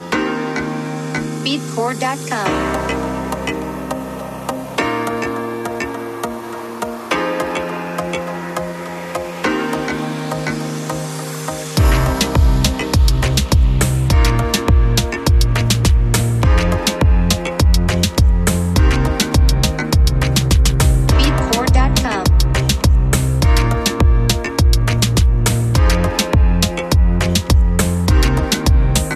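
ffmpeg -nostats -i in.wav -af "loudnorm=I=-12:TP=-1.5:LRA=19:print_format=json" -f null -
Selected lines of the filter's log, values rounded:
"input_i" : "-16.4",
"input_tp" : "-2.0",
"input_lra" : "7.4",
"input_thresh" : "-26.4",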